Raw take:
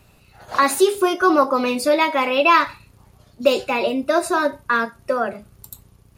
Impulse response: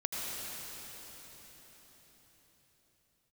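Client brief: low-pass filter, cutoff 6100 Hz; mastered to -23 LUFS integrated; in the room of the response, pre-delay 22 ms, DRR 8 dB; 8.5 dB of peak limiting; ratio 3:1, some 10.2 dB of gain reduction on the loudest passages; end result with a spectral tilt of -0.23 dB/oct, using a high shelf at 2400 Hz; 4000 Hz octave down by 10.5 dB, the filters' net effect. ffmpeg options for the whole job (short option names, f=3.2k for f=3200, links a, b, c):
-filter_complex "[0:a]lowpass=6.1k,highshelf=f=2.4k:g=-9,equalizer=f=4k:t=o:g=-5.5,acompressor=threshold=-24dB:ratio=3,alimiter=limit=-19.5dB:level=0:latency=1,asplit=2[a][b];[1:a]atrim=start_sample=2205,adelay=22[c];[b][c]afir=irnorm=-1:irlink=0,volume=-13dB[d];[a][d]amix=inputs=2:normalize=0,volume=6dB"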